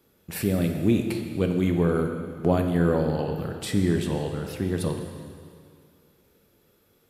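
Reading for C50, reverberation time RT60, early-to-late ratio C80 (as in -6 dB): 5.5 dB, 2.2 s, 6.5 dB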